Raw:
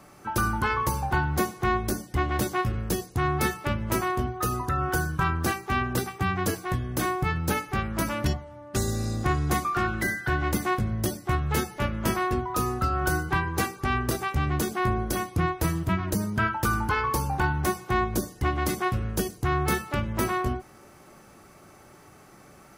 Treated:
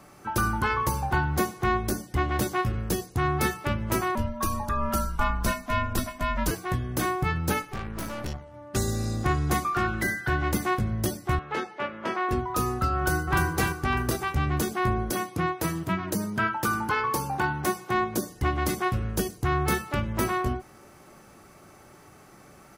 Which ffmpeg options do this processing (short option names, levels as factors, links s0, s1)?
-filter_complex "[0:a]asettb=1/sr,asplit=3[s0][s1][s2];[s0]atrim=end=4.154[s3];[s1]atrim=start=4.15:end=6.51,asetpts=PTS-STARTPTS,afade=t=in:d=0.004:c=qsin,afade=t=out:st=2.356:d=0.004:c=qsin,afreqshift=-140[s4];[s2]atrim=start=6.506[s5];[s3][s4]acrossfade=d=0.004:c1=hsin:c2=qsin[s6];[s6][s5]acrossfade=d=0.004:c1=qsin:c2=hsin,asettb=1/sr,asplit=3[s7][s8][s9];[s7]atrim=end=7.624[s10];[s8]atrim=start=7.62:end=8.54,asetpts=PTS-STARTPTS,afade=t=in:d=0.004:c=qsin,afade=t=out:st=0.916:d=0.004:c=qsin,aeval=exprs='(tanh(31.6*val(0)+0.6)-tanh(0.6))/31.6':c=same[s11];[s9]atrim=start=8.536[s12];[s10][s11]acrossfade=d=0.004:c1=hsin:c2=qsin[s13];[s13][s12]acrossfade=d=0.004:c1=qsin:c2=hsin,asettb=1/sr,asplit=3[s14][s15][s16];[s14]atrim=end=11.394[s17];[s15]atrim=start=11.39:end=12.29,asetpts=PTS-STARTPTS,afade=t=in:d=0.004:c=qsin,afade=t=out:st=0.896:d=0.004:c=qsin,highpass=360,lowpass=3000[s18];[s16]atrim=start=12.286[s19];[s17][s18]acrossfade=d=0.004:c1=hsin:c2=qsin[s20];[s20][s19]acrossfade=d=0.004:c1=qsin:c2=hsin,asplit=2[s21][s22];[s22]afade=t=in:st=12.97:d=0.01,afade=t=out:st=13.42:d=0.01,aecho=0:1:300|600|900|1200|1500:0.668344|0.267338|0.106935|0.042774|0.0171096[s23];[s21][s23]amix=inputs=2:normalize=0,asettb=1/sr,asplit=3[s24][s25][s26];[s24]atrim=end=15.104[s27];[s25]atrim=start=15.1:end=18.3,asetpts=PTS-STARTPTS,afade=t=in:d=0.004:c=qsin,afade=t=out:st=3.196:d=0.004:c=qsin,highpass=150[s28];[s26]atrim=start=18.296[s29];[s27][s28]acrossfade=d=0.004:c1=hsin:c2=qsin[s30];[s30][s29]acrossfade=d=0.004:c1=qsin:c2=hsin"